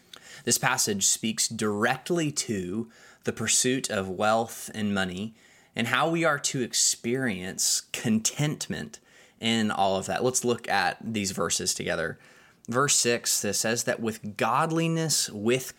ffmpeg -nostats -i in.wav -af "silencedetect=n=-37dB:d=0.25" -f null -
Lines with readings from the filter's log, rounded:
silence_start: 2.83
silence_end: 3.26 | silence_duration: 0.42
silence_start: 5.29
silence_end: 5.76 | silence_duration: 0.48
silence_start: 8.95
silence_end: 9.41 | silence_duration: 0.46
silence_start: 12.13
silence_end: 12.65 | silence_duration: 0.52